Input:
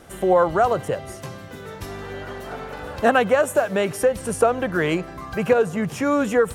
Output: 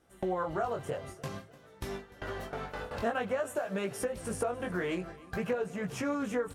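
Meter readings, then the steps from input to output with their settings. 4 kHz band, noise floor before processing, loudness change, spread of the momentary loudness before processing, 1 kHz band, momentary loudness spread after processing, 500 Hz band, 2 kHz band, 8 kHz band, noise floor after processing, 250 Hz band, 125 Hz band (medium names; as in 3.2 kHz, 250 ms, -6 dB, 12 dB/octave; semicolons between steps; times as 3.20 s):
-11.5 dB, -38 dBFS, -14.5 dB, 16 LU, -14.0 dB, 9 LU, -14.0 dB, -13.0 dB, -11.0 dB, -56 dBFS, -11.5 dB, -10.0 dB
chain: gate with hold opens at -23 dBFS; chorus 0.52 Hz, delay 15.5 ms, depth 6.8 ms; compression 2.5:1, threshold -40 dBFS, peak gain reduction 17.5 dB; feedback delay 299 ms, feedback 47%, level -21 dB; loudspeaker Doppler distortion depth 0.11 ms; trim +3 dB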